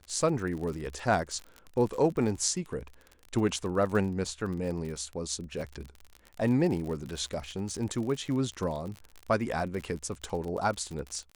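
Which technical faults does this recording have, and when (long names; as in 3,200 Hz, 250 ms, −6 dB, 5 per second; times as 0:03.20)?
surface crackle 44 per second −35 dBFS
0:05.61: drop-out 2.9 ms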